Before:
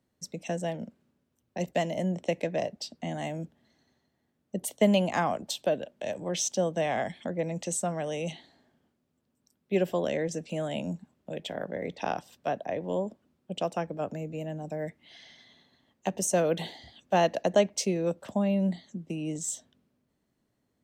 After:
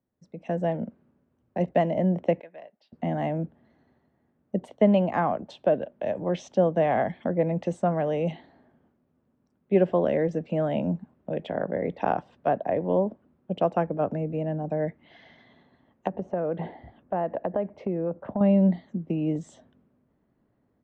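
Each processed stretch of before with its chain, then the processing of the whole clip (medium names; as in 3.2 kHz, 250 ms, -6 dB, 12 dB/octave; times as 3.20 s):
2.41–2.93 s: band-pass filter 7.6 kHz, Q 0.63 + distance through air 310 m
16.07–18.41 s: low-pass 1.7 kHz + compression 3:1, threshold -33 dBFS
whole clip: low-pass 1.5 kHz 12 dB/octave; level rider gain up to 13 dB; trim -6 dB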